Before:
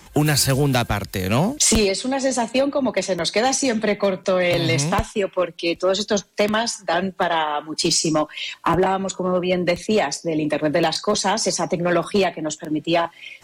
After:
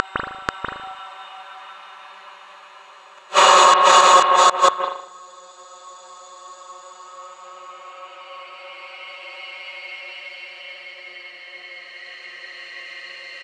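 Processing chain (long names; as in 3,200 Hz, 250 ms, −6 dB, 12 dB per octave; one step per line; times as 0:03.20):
delay that plays each chunk backwards 316 ms, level −12.5 dB
high-pass filter 1,100 Hz 12 dB per octave
spectral tilt +4.5 dB per octave
downward compressor, threshold −20 dBFS, peak gain reduction 17 dB
granular cloud 100 ms, grains 20 per second, spray 100 ms, pitch spread up and down by 0 semitones
extreme stretch with random phases 19×, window 0.25 s, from 0:08.98
gate with flip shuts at −29 dBFS, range −42 dB
high-frequency loss of the air 95 metres
single-tap delay 488 ms −3.5 dB
on a send at −8 dB: convolution reverb RT60 0.65 s, pre-delay 157 ms
on the sum: boost into a limiter +34 dB
level −1 dB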